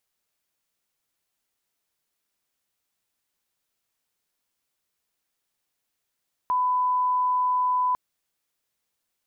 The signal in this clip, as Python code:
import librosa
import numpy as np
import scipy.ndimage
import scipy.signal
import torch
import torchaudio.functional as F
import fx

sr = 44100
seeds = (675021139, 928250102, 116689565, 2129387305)

y = fx.lineup_tone(sr, length_s=1.45, level_db=-20.0)